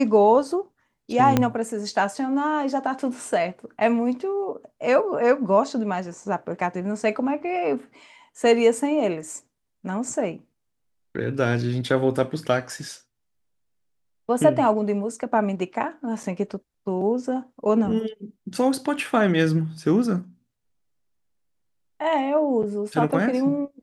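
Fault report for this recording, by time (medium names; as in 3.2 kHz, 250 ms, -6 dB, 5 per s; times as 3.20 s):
1.37 s: pop -5 dBFS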